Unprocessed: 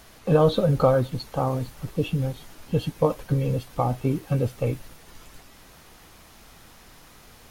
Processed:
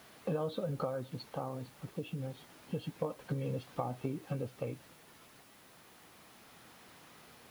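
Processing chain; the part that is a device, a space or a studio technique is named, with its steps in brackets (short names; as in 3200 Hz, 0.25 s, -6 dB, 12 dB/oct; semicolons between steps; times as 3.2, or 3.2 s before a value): medium wave at night (BPF 140–4300 Hz; compressor, threshold -27 dBFS, peak gain reduction 12.5 dB; tremolo 0.28 Hz, depth 32%; whine 10000 Hz -66 dBFS; white noise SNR 24 dB); gain -5 dB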